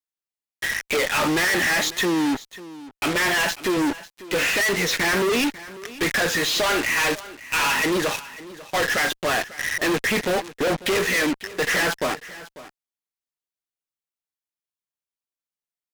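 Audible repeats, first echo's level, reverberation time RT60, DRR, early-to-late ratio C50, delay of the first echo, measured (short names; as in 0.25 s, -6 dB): 1, -17.5 dB, none, none, none, 0.545 s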